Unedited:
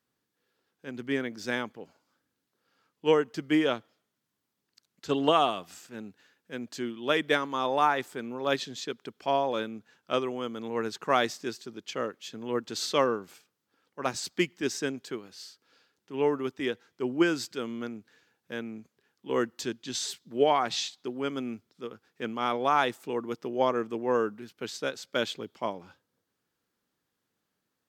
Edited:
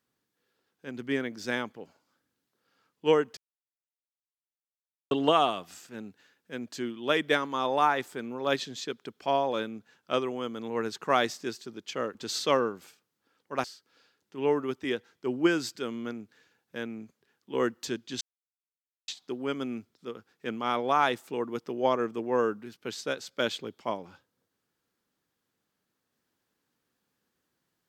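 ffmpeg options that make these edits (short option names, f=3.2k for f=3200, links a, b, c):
-filter_complex "[0:a]asplit=7[a][b][c][d][e][f][g];[a]atrim=end=3.37,asetpts=PTS-STARTPTS,afade=t=out:st=3.366:d=0.004:c=hsin[h];[b]atrim=start=3.37:end=5.11,asetpts=PTS-STARTPTS,volume=0[i];[c]atrim=start=5.11:end=12.152,asetpts=PTS-STARTPTS,afade=t=in:d=0.004:c=hsin[j];[d]atrim=start=12.618:end=14.112[k];[e]atrim=start=15.398:end=19.97,asetpts=PTS-STARTPTS,afade=t=out:st=4.568:d=0.004:c=hsin[l];[f]atrim=start=19.97:end=20.84,asetpts=PTS-STARTPTS,volume=0[m];[g]atrim=start=20.84,asetpts=PTS-STARTPTS,afade=t=in:d=0.004:c=hsin[n];[h][i][j]concat=n=3:v=0:a=1[o];[o][k]acrossfade=d=0.004:c1=hsin:c2=hsin[p];[l][m][n]concat=n=3:v=0:a=1[q];[p][q]acrossfade=d=0.004:c1=hsin:c2=hsin"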